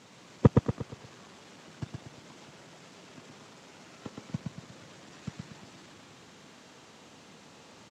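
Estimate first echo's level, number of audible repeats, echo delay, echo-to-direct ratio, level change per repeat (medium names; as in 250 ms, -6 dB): -3.5 dB, 5, 118 ms, -2.5 dB, -7.5 dB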